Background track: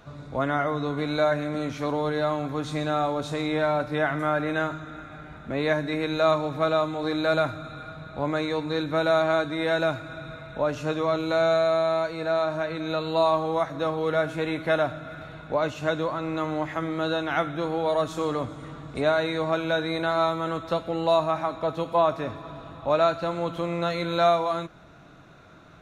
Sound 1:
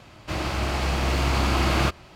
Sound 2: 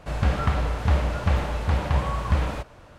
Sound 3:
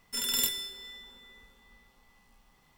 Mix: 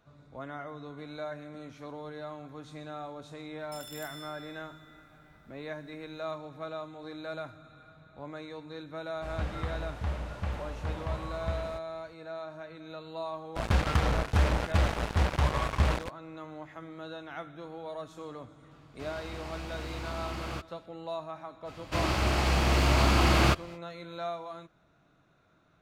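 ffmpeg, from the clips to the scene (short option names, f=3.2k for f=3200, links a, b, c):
-filter_complex "[2:a]asplit=2[a][b];[1:a]asplit=2[c][d];[0:a]volume=-15.5dB[e];[3:a]acompressor=threshold=-37dB:ratio=6:attack=3.2:release=140:knee=1:detection=peak[f];[b]acrusher=bits=3:mix=0:aa=0.5[g];[f]atrim=end=2.77,asetpts=PTS-STARTPTS,volume=-7dB,afade=t=in:d=0.004:c=hsin,afade=t=out:st=2.766:d=0.004:c=hsin,adelay=3590[h];[a]atrim=end=2.98,asetpts=PTS-STARTPTS,volume=-12dB,afade=t=in:d=0.004:c=hsin,afade=t=out:st=2.976:d=0.004:c=hsin,adelay=9160[i];[g]atrim=end=2.98,asetpts=PTS-STARTPTS,volume=-4dB,afade=t=in:d=0.004:c=hsin,afade=t=out:st=2.976:d=0.004:c=hsin,adelay=594468S[j];[c]atrim=end=2.15,asetpts=PTS-STARTPTS,volume=-16dB,afade=t=in:d=0.004:c=hsin,afade=t=out:st=2.146:d=0.004:c=hsin,adelay=18710[k];[d]atrim=end=2.15,asetpts=PTS-STARTPTS,volume=-1dB,afade=t=in:d=0.05,afade=t=out:st=2.1:d=0.05,adelay=954324S[l];[e][h][i][j][k][l]amix=inputs=6:normalize=0"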